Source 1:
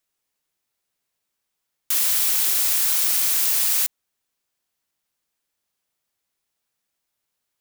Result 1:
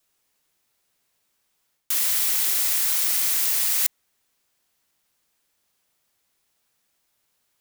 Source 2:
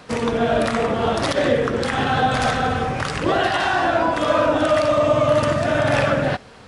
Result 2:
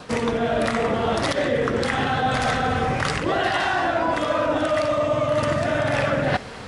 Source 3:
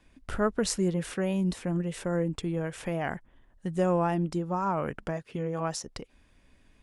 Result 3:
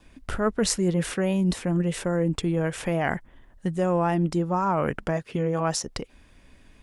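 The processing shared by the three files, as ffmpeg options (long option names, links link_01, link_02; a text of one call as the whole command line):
ffmpeg -i in.wav -af "adynamicequalizer=threshold=0.00501:dfrequency=2000:dqfactor=7.2:tfrequency=2000:tqfactor=7.2:attack=5:release=100:ratio=0.375:range=2:mode=boostabove:tftype=bell,areverse,acompressor=threshold=-27dB:ratio=6,areverse,volume=7.5dB" out.wav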